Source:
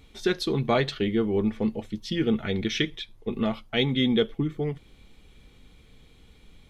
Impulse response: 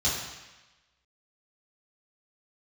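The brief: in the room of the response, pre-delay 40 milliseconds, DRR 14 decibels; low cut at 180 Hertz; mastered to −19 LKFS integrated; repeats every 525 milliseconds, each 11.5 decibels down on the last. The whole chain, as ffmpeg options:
-filter_complex "[0:a]highpass=180,aecho=1:1:525|1050|1575:0.266|0.0718|0.0194,asplit=2[link_01][link_02];[1:a]atrim=start_sample=2205,adelay=40[link_03];[link_02][link_03]afir=irnorm=-1:irlink=0,volume=-24.5dB[link_04];[link_01][link_04]amix=inputs=2:normalize=0,volume=8.5dB"

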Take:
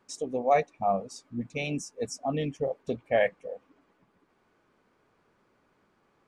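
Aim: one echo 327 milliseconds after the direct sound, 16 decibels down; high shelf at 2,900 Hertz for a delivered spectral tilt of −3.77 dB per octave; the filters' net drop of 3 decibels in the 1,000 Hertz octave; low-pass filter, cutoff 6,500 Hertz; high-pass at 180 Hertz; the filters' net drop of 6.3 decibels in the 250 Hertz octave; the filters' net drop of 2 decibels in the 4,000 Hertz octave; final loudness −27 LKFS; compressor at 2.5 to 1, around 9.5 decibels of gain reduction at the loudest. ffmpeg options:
ffmpeg -i in.wav -af "highpass=180,lowpass=6500,equalizer=frequency=250:width_type=o:gain=-6,equalizer=frequency=1000:width_type=o:gain=-5,highshelf=frequency=2900:gain=6,equalizer=frequency=4000:width_type=o:gain=-7.5,acompressor=threshold=-36dB:ratio=2.5,aecho=1:1:327:0.158,volume=12.5dB" out.wav

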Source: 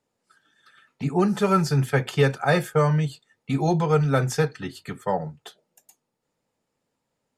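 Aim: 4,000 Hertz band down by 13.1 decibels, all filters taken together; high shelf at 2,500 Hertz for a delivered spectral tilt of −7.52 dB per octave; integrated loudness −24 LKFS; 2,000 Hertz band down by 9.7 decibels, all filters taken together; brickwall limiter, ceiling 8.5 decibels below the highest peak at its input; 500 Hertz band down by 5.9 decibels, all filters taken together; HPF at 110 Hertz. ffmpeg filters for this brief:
ffmpeg -i in.wav -af "highpass=110,equalizer=frequency=500:width_type=o:gain=-6.5,equalizer=frequency=2000:width_type=o:gain=-8,highshelf=frequency=2500:gain=-7,equalizer=frequency=4000:width_type=o:gain=-8,volume=6dB,alimiter=limit=-14.5dB:level=0:latency=1" out.wav

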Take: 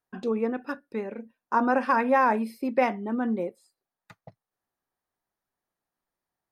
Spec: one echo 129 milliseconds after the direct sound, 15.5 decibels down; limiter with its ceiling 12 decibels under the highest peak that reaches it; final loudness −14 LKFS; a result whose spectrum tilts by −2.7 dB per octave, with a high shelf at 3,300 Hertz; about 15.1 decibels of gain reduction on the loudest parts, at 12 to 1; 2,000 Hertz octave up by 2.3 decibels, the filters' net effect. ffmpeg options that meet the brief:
ffmpeg -i in.wav -af "equalizer=frequency=2000:width_type=o:gain=4.5,highshelf=frequency=3300:gain=-5,acompressor=threshold=-32dB:ratio=12,alimiter=level_in=8.5dB:limit=-24dB:level=0:latency=1,volume=-8.5dB,aecho=1:1:129:0.168,volume=28.5dB" out.wav

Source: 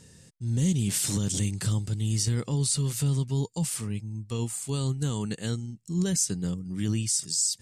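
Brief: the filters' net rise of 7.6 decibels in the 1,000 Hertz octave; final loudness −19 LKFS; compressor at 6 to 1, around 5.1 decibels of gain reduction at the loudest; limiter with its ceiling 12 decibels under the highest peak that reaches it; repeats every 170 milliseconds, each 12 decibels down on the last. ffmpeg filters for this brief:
ffmpeg -i in.wav -af "equalizer=frequency=1000:width_type=o:gain=9,acompressor=threshold=-27dB:ratio=6,alimiter=level_in=5dB:limit=-24dB:level=0:latency=1,volume=-5dB,aecho=1:1:170|340|510:0.251|0.0628|0.0157,volume=18dB" out.wav

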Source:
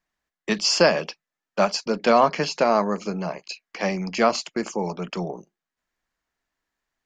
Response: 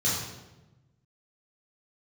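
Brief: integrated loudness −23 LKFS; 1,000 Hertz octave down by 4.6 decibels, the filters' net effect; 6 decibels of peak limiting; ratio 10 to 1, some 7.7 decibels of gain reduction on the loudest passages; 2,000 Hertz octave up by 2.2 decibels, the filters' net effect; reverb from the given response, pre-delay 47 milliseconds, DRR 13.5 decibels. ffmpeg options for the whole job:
-filter_complex "[0:a]equalizer=frequency=1000:width_type=o:gain=-8,equalizer=frequency=2000:width_type=o:gain=5.5,acompressor=threshold=-21dB:ratio=10,alimiter=limit=-16.5dB:level=0:latency=1,asplit=2[link_01][link_02];[1:a]atrim=start_sample=2205,adelay=47[link_03];[link_02][link_03]afir=irnorm=-1:irlink=0,volume=-24dB[link_04];[link_01][link_04]amix=inputs=2:normalize=0,volume=6dB"

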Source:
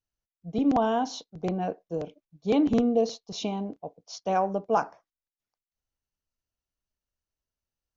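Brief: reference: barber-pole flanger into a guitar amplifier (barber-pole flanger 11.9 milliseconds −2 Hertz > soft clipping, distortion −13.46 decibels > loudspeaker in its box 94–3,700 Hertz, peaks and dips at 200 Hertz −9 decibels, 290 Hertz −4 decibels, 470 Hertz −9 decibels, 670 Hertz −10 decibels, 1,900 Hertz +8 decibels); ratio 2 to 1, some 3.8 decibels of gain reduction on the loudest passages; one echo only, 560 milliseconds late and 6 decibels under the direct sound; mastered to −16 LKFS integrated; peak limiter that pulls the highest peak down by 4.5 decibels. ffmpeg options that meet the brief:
ffmpeg -i in.wav -filter_complex "[0:a]acompressor=threshold=-25dB:ratio=2,alimiter=limit=-20.5dB:level=0:latency=1,aecho=1:1:560:0.501,asplit=2[link_01][link_02];[link_02]adelay=11.9,afreqshift=-2[link_03];[link_01][link_03]amix=inputs=2:normalize=1,asoftclip=threshold=-29.5dB,highpass=94,equalizer=frequency=200:width_type=q:width=4:gain=-9,equalizer=frequency=290:width_type=q:width=4:gain=-4,equalizer=frequency=470:width_type=q:width=4:gain=-9,equalizer=frequency=670:width_type=q:width=4:gain=-10,equalizer=frequency=1900:width_type=q:width=4:gain=8,lowpass=frequency=3700:width=0.5412,lowpass=frequency=3700:width=1.3066,volume=27dB" out.wav

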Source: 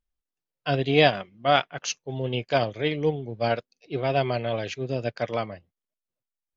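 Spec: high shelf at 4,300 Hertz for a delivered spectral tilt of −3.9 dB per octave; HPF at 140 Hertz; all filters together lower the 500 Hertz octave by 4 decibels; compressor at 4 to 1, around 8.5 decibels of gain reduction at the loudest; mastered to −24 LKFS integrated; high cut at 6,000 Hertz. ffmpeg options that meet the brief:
ffmpeg -i in.wav -af "highpass=140,lowpass=6000,equalizer=frequency=500:width_type=o:gain=-5,highshelf=frequency=4300:gain=-4.5,acompressor=threshold=-26dB:ratio=4,volume=9dB" out.wav

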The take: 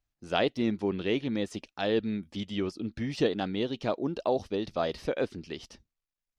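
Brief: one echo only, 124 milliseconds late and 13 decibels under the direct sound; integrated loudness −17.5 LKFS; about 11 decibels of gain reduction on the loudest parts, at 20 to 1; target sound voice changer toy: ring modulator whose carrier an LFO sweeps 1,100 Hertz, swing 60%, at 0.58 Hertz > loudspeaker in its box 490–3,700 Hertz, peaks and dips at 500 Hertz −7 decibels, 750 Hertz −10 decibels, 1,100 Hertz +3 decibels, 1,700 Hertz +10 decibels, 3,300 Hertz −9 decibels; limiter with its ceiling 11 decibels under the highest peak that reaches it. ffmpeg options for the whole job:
ffmpeg -i in.wav -af "acompressor=threshold=-32dB:ratio=20,alimiter=level_in=8dB:limit=-24dB:level=0:latency=1,volume=-8dB,aecho=1:1:124:0.224,aeval=exprs='val(0)*sin(2*PI*1100*n/s+1100*0.6/0.58*sin(2*PI*0.58*n/s))':channel_layout=same,highpass=490,equalizer=frequency=500:width_type=q:width=4:gain=-7,equalizer=frequency=750:width_type=q:width=4:gain=-10,equalizer=frequency=1100:width_type=q:width=4:gain=3,equalizer=frequency=1700:width_type=q:width=4:gain=10,equalizer=frequency=3300:width_type=q:width=4:gain=-9,lowpass=frequency=3700:width=0.5412,lowpass=frequency=3700:width=1.3066,volume=24dB" out.wav

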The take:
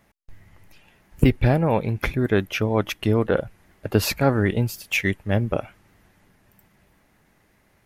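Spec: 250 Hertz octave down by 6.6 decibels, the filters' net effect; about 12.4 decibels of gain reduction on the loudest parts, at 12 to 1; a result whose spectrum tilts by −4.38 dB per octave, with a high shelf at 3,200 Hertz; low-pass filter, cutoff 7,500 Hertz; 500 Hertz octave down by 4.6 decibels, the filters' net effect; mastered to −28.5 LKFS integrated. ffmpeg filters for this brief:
ffmpeg -i in.wav -af "lowpass=7500,equalizer=frequency=250:width_type=o:gain=-8,equalizer=frequency=500:width_type=o:gain=-3.5,highshelf=frequency=3200:gain=8.5,acompressor=threshold=-29dB:ratio=12,volume=6dB" out.wav

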